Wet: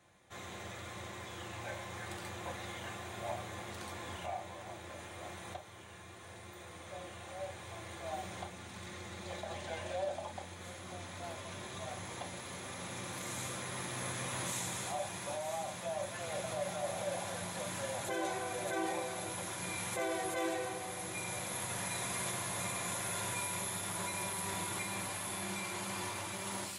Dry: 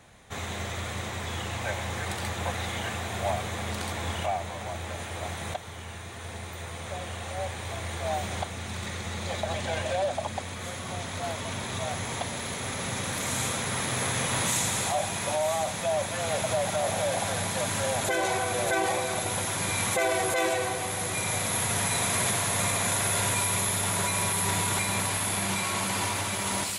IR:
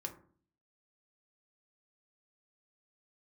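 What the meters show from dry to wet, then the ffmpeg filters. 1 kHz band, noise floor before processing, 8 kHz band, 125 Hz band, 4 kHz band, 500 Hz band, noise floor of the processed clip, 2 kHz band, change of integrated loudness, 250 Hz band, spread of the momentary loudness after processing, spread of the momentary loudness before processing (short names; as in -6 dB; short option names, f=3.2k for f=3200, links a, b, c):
-10.5 dB, -38 dBFS, -12.0 dB, -13.0 dB, -12.0 dB, -10.0 dB, -51 dBFS, -11.0 dB, -11.0 dB, -9.0 dB, 11 LU, 10 LU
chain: -filter_complex "[0:a]highpass=f=120:p=1[a];[1:a]atrim=start_sample=2205,atrim=end_sample=3087[b];[a][b]afir=irnorm=-1:irlink=0,volume=-9dB"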